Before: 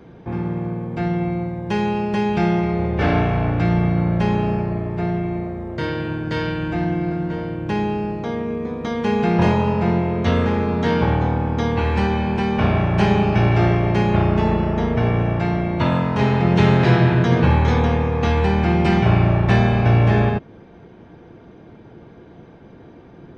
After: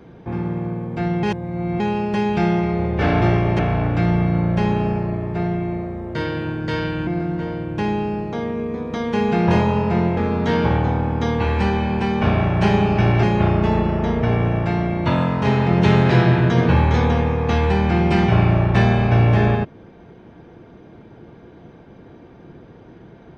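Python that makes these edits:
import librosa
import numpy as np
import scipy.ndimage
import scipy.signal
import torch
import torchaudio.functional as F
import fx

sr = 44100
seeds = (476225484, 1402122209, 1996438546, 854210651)

y = fx.edit(x, sr, fx.reverse_span(start_s=1.23, length_s=0.57),
    fx.cut(start_s=6.7, length_s=0.28),
    fx.cut(start_s=10.08, length_s=0.46),
    fx.move(start_s=13.6, length_s=0.37, to_s=3.22), tone=tone)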